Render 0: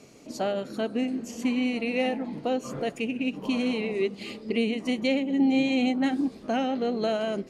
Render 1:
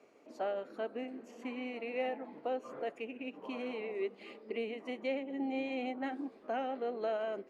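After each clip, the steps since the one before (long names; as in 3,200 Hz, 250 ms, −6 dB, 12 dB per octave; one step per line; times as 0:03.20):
three-way crossover with the lows and the highs turned down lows −23 dB, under 320 Hz, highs −17 dB, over 2,400 Hz
level −6.5 dB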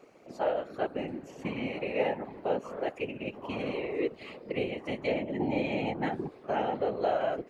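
random phases in short frames
level +6 dB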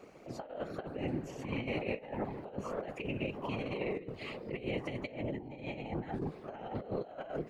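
sub-octave generator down 1 octave, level −3 dB
compressor whose output falls as the input rises −35 dBFS, ratio −0.5
level −2.5 dB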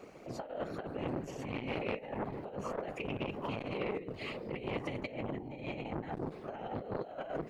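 saturating transformer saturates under 880 Hz
level +2.5 dB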